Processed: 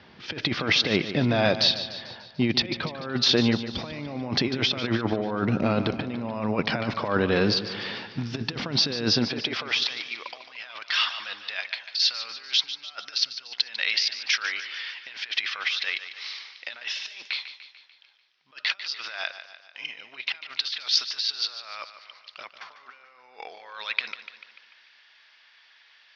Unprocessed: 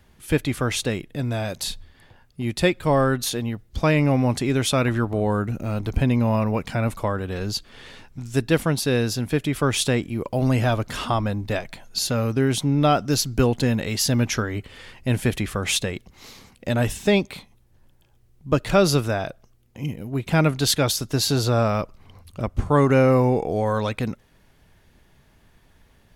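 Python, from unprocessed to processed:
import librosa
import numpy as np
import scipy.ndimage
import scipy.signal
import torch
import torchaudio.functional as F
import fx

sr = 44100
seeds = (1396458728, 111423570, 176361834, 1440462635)

y = scipy.signal.sosfilt(scipy.signal.butter(12, 5400.0, 'lowpass', fs=sr, output='sos'), x)
y = fx.low_shelf(y, sr, hz=490.0, db=-4.5)
y = fx.over_compress(y, sr, threshold_db=-29.0, ratio=-0.5)
y = fx.filter_sweep_highpass(y, sr, from_hz=160.0, to_hz=1900.0, start_s=9.11, end_s=10.13, q=0.85)
y = fx.echo_feedback(y, sr, ms=147, feedback_pct=54, wet_db=-12)
y = y * 10.0 ** (5.0 / 20.0)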